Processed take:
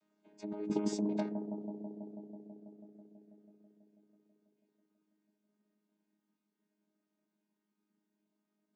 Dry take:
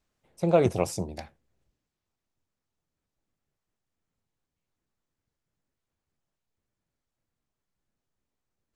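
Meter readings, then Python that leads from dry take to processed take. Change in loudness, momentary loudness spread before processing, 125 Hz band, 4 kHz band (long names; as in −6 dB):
−12.5 dB, 15 LU, −14.0 dB, −8.0 dB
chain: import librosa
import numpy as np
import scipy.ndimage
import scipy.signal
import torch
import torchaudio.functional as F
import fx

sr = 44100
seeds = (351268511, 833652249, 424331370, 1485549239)

p1 = fx.chord_vocoder(x, sr, chord='bare fifth', root=56)
p2 = fx.over_compress(p1, sr, threshold_db=-34.0, ratio=-1.0)
p3 = p2 + fx.echo_bbd(p2, sr, ms=163, stages=1024, feedback_pct=81, wet_db=-7.5, dry=0)
y = p3 * librosa.db_to_amplitude(-2.5)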